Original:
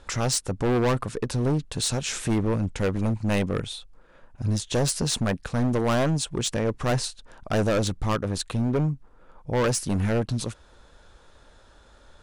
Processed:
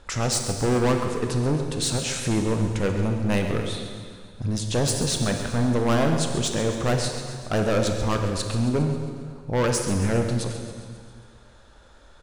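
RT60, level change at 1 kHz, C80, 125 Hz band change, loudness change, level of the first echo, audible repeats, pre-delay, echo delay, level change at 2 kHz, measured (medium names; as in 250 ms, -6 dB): 1.9 s, +1.5 dB, 5.5 dB, +1.5 dB, +1.5 dB, -12.0 dB, 5, 24 ms, 135 ms, +1.5 dB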